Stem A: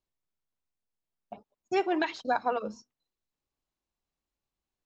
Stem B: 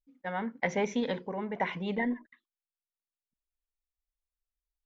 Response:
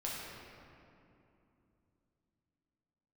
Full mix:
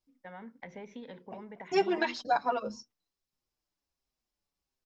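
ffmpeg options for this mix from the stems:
-filter_complex "[0:a]equalizer=f=5.2k:w=3.9:g=8.5,asplit=2[a][b];[b]adelay=6.2,afreqshift=-1.4[c];[a][c]amix=inputs=2:normalize=1,volume=2.5dB[d];[1:a]acrossover=split=390[e][f];[f]acompressor=threshold=-32dB:ratio=2.5[g];[e][g]amix=inputs=2:normalize=0,lowpass=4.9k,acompressor=threshold=-37dB:ratio=3,volume=-7dB[h];[d][h]amix=inputs=2:normalize=0"

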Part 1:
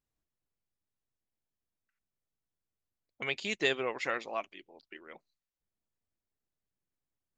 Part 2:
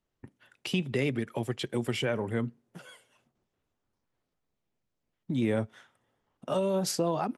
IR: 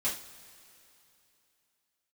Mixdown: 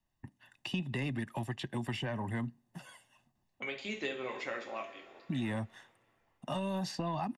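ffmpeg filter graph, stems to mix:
-filter_complex "[0:a]adelay=400,volume=-7.5dB,asplit=2[a][b];[b]volume=-3.5dB[c];[1:a]asoftclip=type=tanh:threshold=-18.5dB,aecho=1:1:1.1:0.75,volume=-2.5dB[d];[2:a]atrim=start_sample=2205[e];[c][e]afir=irnorm=-1:irlink=0[f];[a][d][f]amix=inputs=3:normalize=0,acrossover=split=250|1100|4600[g][h][i][j];[g]acompressor=threshold=-37dB:ratio=4[k];[h]acompressor=threshold=-38dB:ratio=4[l];[i]acompressor=threshold=-40dB:ratio=4[m];[j]acompressor=threshold=-59dB:ratio=4[n];[k][l][m][n]amix=inputs=4:normalize=0"

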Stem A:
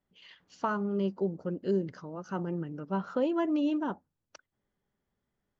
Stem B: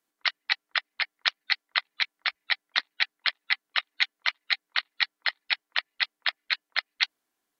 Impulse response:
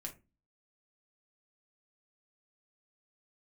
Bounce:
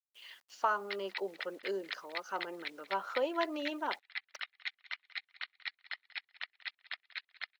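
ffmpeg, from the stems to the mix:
-filter_complex "[0:a]highpass=610,acrusher=bits=10:mix=0:aa=0.000001,volume=2dB[a];[1:a]equalizer=f=2k:w=1.1:g=5,adelay=650,volume=-19dB,asplit=2[b][c];[c]volume=-19dB,aecho=0:1:188|376|564|752:1|0.23|0.0529|0.0122[d];[a][b][d]amix=inputs=3:normalize=0,highpass=270"

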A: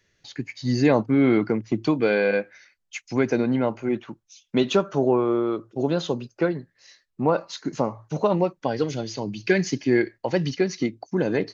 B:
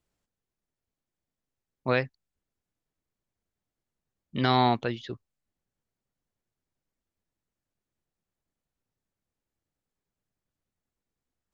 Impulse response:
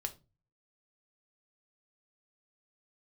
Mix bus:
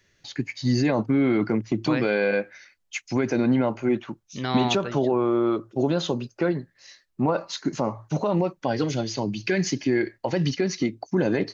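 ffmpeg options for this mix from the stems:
-filter_complex "[0:a]bandreject=f=460:w=12,alimiter=limit=-16.5dB:level=0:latency=1:release=54,volume=3dB[a];[1:a]volume=-4dB[b];[a][b]amix=inputs=2:normalize=0"

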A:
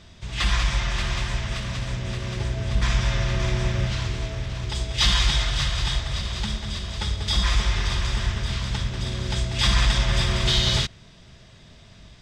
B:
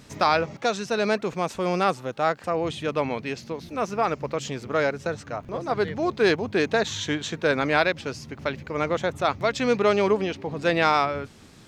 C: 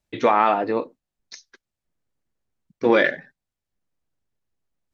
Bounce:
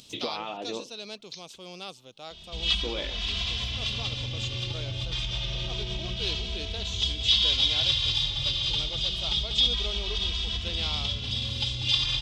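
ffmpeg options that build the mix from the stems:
-filter_complex "[0:a]alimiter=limit=-15.5dB:level=0:latency=1:release=133,asplit=2[a][b];[b]adelay=2.7,afreqshift=0.27[c];[a][c]amix=inputs=2:normalize=1,adelay=2300,volume=-2dB[d];[1:a]acompressor=mode=upward:threshold=-31dB:ratio=2.5,volume=-19.5dB[e];[2:a]volume=-8dB[f];[d][f]amix=inputs=2:normalize=0,lowpass=3.7k,acompressor=threshold=-30dB:ratio=6,volume=0dB[g];[e][g]amix=inputs=2:normalize=0,highshelf=f=2.4k:t=q:w=3:g=10.5"

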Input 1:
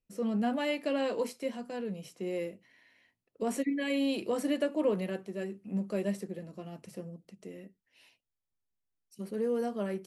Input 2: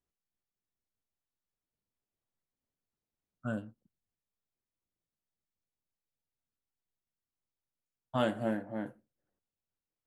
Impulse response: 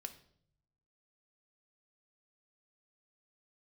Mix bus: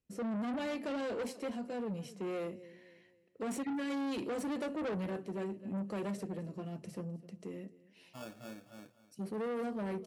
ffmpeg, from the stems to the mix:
-filter_complex "[0:a]lowpass=11k,lowshelf=f=390:g=6.5,volume=-2dB,asplit=4[a][b][c][d];[b]volume=-13dB[e];[c]volume=-20dB[f];[1:a]acrusher=samples=22:mix=1:aa=0.000001,volume=-15dB,asplit=2[g][h];[h]volume=-16dB[i];[d]apad=whole_len=443980[j];[g][j]sidechaincompress=threshold=-51dB:ratio=8:attack=16:release=808[k];[2:a]atrim=start_sample=2205[l];[e][l]afir=irnorm=-1:irlink=0[m];[f][i]amix=inputs=2:normalize=0,aecho=0:1:256|512|768|1024|1280:1|0.39|0.152|0.0593|0.0231[n];[a][k][m][n]amix=inputs=4:normalize=0,asoftclip=type=tanh:threshold=-34dB,highpass=59"

